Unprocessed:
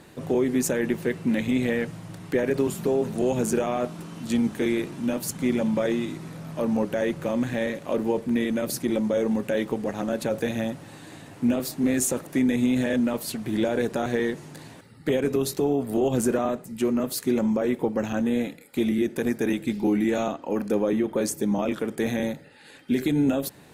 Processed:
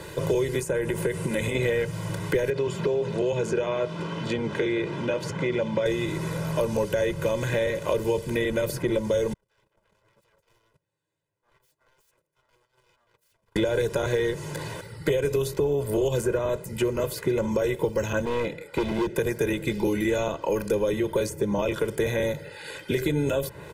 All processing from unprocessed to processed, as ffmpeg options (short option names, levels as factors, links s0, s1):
-filter_complex "[0:a]asettb=1/sr,asplit=3[s0][s1][s2];[s0]atrim=end=0.594[s3];[s1]atrim=start=0.59:end=1.55,asetpts=PTS-STARTPTS,afade=t=in:d=0.004:c=qsin,afade=t=out:st=0.956:d=0.004:c=qsin,equalizer=f=9300:t=o:w=0.75:g=13.5,acompressor=threshold=0.0562:ratio=5:attack=3.2:release=140:knee=1:detection=peak[s4];[s2]atrim=start=1.546[s5];[s3][s4]acrossfade=d=0.004:c1=hsin:c2=qsin[s6];[s6][s5]acrossfade=d=0.004:c1=qsin:c2=hsin,asettb=1/sr,asplit=3[s7][s8][s9];[s7]atrim=end=2.504[s10];[s8]atrim=start=2.5:end=5.86,asetpts=PTS-STARTPTS,afade=t=in:d=0.004:c=qsin,afade=t=out:st=3.356:d=0.004:c=qsin,highpass=130,lowpass=3600,acompressor=threshold=0.0355:ratio=1.5:attack=3.2:release=140:knee=1:detection=peak[s11];[s9]atrim=start=5.856[s12];[s10][s11]acrossfade=d=0.004:c1=hsin:c2=qsin[s13];[s13][s12]acrossfade=d=0.004:c1=qsin:c2=hsin,asettb=1/sr,asplit=3[s14][s15][s16];[s14]atrim=end=9.334[s17];[s15]atrim=start=9.33:end=13.56,asetpts=PTS-STARTPTS,afade=t=in:d=0.004:c=qsin,afade=t=out:st=4.226:d=0.004:c=qsin,acompressor=threshold=0.0447:ratio=5:attack=3.2:release=140:knee=1:detection=peak,aeval=exprs='0.0158*(abs(mod(val(0)/0.0158+3,4)-2)-1)':c=same,agate=range=0.00316:threshold=0.0141:ratio=16:release=100:detection=peak[s18];[s16]atrim=start=13.556[s19];[s17][s18]acrossfade=d=0.004:c1=hsin:c2=qsin[s20];[s20][s19]acrossfade=d=0.004:c1=qsin:c2=hsin,asettb=1/sr,asplit=3[s21][s22][s23];[s21]atrim=end=18.254[s24];[s22]atrim=start=18.25:end=19.15,asetpts=PTS-STARTPTS,afade=t=in:d=0.004:c=qsin,afade=t=out:st=0.896:d=0.004:c=qsin,aemphasis=mode=reproduction:type=75fm,volume=14.1,asoftclip=hard,volume=0.0708[s25];[s23]atrim=start=19.146[s26];[s24][s25]acrossfade=d=0.004:c1=hsin:c2=qsin[s27];[s27][s26]acrossfade=d=0.004:c1=qsin:c2=hsin,bandreject=f=4100:w=22,aecho=1:1:2:0.87,acrossover=split=140|2700[s28][s29][s30];[s28]acompressor=threshold=0.00794:ratio=4[s31];[s29]acompressor=threshold=0.0224:ratio=4[s32];[s30]acompressor=threshold=0.00355:ratio=4[s33];[s31][s32][s33]amix=inputs=3:normalize=0,volume=2.66"